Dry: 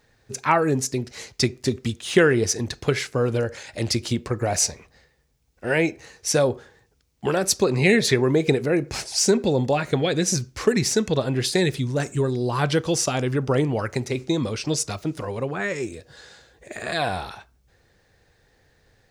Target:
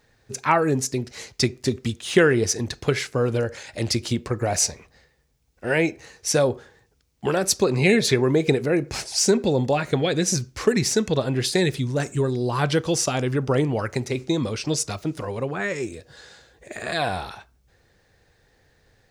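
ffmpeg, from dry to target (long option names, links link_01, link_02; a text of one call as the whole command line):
ffmpeg -i in.wav -filter_complex "[0:a]asettb=1/sr,asplit=3[link_01][link_02][link_03];[link_01]atrim=end=7.754[link_04];[link_02]atrim=start=7.75:end=8.17,asetpts=PTS-STARTPTS,afade=type=in:duration=0.004:curve=qsin,afade=type=out:start_time=0.416:duration=0.004:curve=qsin,bandreject=frequency=1900:width=12[link_05];[link_03]atrim=start=8.166[link_06];[link_04][link_05]acrossfade=duration=0.004:curve1=hsin:curve2=qsin[link_07];[link_07][link_06]acrossfade=duration=0.004:curve1=qsin:curve2=hsin" out.wav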